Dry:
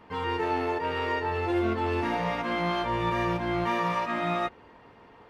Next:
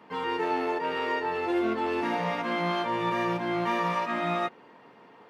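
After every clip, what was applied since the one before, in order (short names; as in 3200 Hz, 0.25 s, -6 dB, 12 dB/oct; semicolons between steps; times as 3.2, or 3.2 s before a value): HPF 150 Hz 24 dB/oct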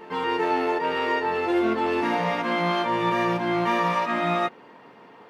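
reverse echo 0.389 s -20.5 dB; gain +4.5 dB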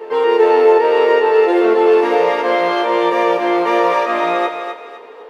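resonant high-pass 450 Hz, resonance Q 4.5; thinning echo 0.253 s, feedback 36%, high-pass 590 Hz, level -6 dB; gain +4.5 dB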